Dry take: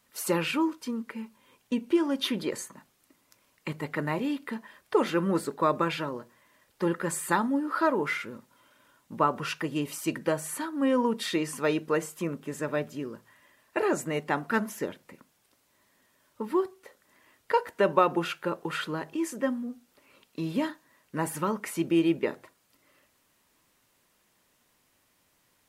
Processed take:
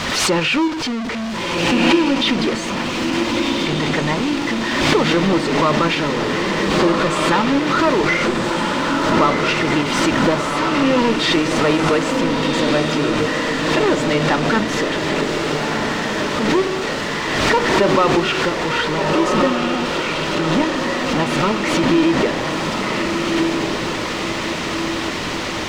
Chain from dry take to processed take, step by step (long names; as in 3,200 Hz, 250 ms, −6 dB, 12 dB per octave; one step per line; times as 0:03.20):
converter with a step at zero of −22.5 dBFS
parametric band 4,500 Hz +4.5 dB 2.6 octaves
notch filter 1,600 Hz, Q 20
in parallel at −0.5 dB: output level in coarse steps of 11 dB
on the sum: bit reduction 5 bits
high-frequency loss of the air 150 metres
on a send: feedback delay with all-pass diffusion 1,405 ms, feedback 58%, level −3 dB
on the sum: background raised ahead of every attack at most 32 dB per second